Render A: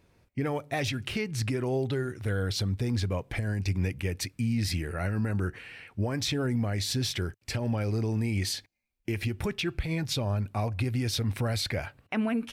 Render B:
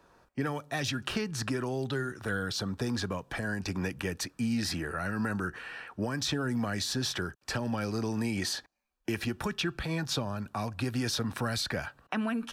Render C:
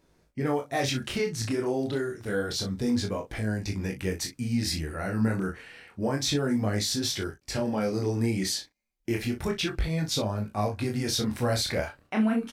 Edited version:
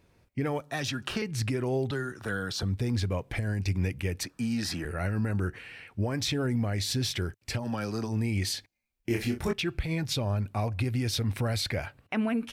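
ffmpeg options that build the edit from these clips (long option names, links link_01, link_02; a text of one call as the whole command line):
ffmpeg -i take0.wav -i take1.wav -i take2.wav -filter_complex "[1:a]asplit=4[link_01][link_02][link_03][link_04];[0:a]asplit=6[link_05][link_06][link_07][link_08][link_09][link_10];[link_05]atrim=end=0.612[link_11];[link_01]atrim=start=0.608:end=1.222[link_12];[link_06]atrim=start=1.218:end=1.912[link_13];[link_02]atrim=start=1.908:end=2.632[link_14];[link_07]atrim=start=2.628:end=4.232[link_15];[link_03]atrim=start=4.228:end=4.852[link_16];[link_08]atrim=start=4.848:end=7.67[link_17];[link_04]atrim=start=7.57:end=8.14[link_18];[link_09]atrim=start=8.04:end=9.102[link_19];[2:a]atrim=start=9.098:end=9.532[link_20];[link_10]atrim=start=9.528[link_21];[link_11][link_12]acrossfade=duration=0.004:curve1=hsin:curve2=hsin[link_22];[link_22][link_13]acrossfade=duration=0.004:curve1=hsin:curve2=hsin[link_23];[link_23][link_14]acrossfade=duration=0.004:curve1=hsin:curve2=hsin[link_24];[link_24][link_15]acrossfade=duration=0.004:curve1=hsin:curve2=hsin[link_25];[link_25][link_16]acrossfade=duration=0.004:curve1=hsin:curve2=hsin[link_26];[link_26][link_17]acrossfade=duration=0.004:curve1=hsin:curve2=hsin[link_27];[link_27][link_18]acrossfade=duration=0.1:curve1=tri:curve2=tri[link_28];[link_28][link_19]acrossfade=duration=0.1:curve1=tri:curve2=tri[link_29];[link_29][link_20]acrossfade=duration=0.004:curve1=hsin:curve2=hsin[link_30];[link_30][link_21]acrossfade=duration=0.004:curve1=hsin:curve2=hsin" out.wav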